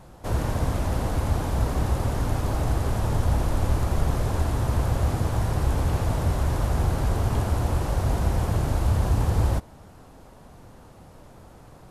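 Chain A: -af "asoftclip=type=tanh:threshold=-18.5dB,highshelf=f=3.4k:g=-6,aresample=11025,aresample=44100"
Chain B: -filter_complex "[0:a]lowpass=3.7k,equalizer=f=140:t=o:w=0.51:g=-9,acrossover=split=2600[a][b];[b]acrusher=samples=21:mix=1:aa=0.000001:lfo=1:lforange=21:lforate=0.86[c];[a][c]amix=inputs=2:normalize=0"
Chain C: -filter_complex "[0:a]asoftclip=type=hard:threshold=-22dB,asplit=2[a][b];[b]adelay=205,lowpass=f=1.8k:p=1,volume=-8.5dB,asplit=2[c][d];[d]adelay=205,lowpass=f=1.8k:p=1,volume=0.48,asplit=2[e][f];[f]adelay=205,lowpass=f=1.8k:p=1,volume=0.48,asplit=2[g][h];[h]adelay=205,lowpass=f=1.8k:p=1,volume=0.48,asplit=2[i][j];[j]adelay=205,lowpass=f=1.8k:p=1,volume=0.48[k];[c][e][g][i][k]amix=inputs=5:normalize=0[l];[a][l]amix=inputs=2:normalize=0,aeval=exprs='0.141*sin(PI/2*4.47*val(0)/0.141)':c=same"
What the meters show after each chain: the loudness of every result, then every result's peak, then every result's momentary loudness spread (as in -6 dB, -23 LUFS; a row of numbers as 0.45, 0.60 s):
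-28.0, -27.0, -21.0 LUFS; -18.5, -11.5, -17.0 dBFS; 2, 3, 11 LU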